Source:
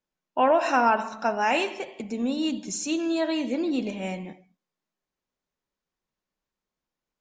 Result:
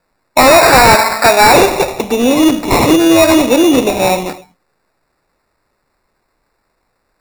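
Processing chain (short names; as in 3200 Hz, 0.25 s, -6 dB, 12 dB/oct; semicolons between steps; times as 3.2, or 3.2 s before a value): bell 200 Hz -14 dB 1 oct; in parallel at -3 dB: compressor, threshold -31 dBFS, peak gain reduction 13 dB; on the sum: sample-and-hold 14×; sine folder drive 8 dB, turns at -10 dBFS; gain +8 dB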